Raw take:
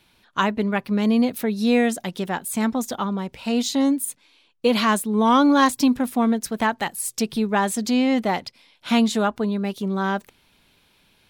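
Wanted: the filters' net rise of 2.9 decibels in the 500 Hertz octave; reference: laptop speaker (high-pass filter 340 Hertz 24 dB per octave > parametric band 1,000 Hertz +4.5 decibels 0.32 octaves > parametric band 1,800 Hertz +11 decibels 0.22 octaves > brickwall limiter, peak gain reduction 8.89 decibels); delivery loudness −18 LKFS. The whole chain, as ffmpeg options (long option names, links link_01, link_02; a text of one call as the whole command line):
ffmpeg -i in.wav -af "highpass=frequency=340:width=0.5412,highpass=frequency=340:width=1.3066,equalizer=frequency=500:width_type=o:gain=3.5,equalizer=frequency=1000:width_type=o:width=0.32:gain=4.5,equalizer=frequency=1800:width_type=o:width=0.22:gain=11,volume=6.5dB,alimiter=limit=-5.5dB:level=0:latency=1" out.wav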